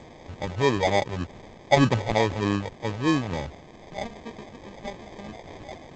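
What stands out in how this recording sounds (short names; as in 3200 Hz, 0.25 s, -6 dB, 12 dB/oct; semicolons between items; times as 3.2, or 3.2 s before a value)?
a quantiser's noise floor 8-bit, dither triangular; phasing stages 4, 3.3 Hz, lowest notch 290–1800 Hz; aliases and images of a low sample rate 1400 Hz, jitter 0%; G.722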